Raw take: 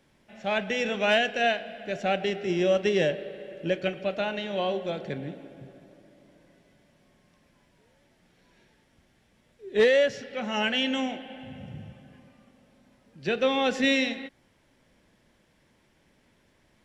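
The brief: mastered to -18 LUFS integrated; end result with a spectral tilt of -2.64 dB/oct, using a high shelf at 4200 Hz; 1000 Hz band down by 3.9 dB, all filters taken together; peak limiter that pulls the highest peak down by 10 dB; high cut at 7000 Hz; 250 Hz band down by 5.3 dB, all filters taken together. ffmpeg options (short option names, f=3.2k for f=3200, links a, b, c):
-af "lowpass=7k,equalizer=f=250:t=o:g=-6.5,equalizer=f=1k:t=o:g=-5,highshelf=f=4.2k:g=-6.5,volume=16.5dB,alimiter=limit=-7.5dB:level=0:latency=1"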